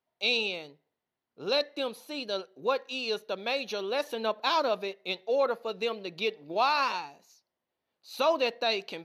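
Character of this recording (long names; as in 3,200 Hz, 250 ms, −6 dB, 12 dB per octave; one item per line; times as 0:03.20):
background noise floor −87 dBFS
spectral slope +0.5 dB per octave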